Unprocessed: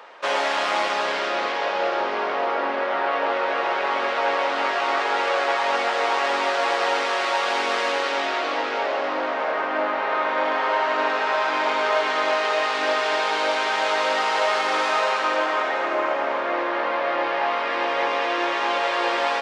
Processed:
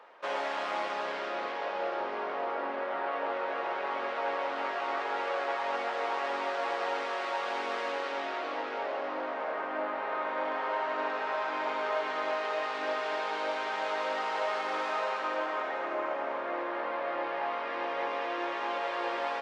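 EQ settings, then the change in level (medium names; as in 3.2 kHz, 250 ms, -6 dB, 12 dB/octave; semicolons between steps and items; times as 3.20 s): treble shelf 2.8 kHz -9 dB; -9.0 dB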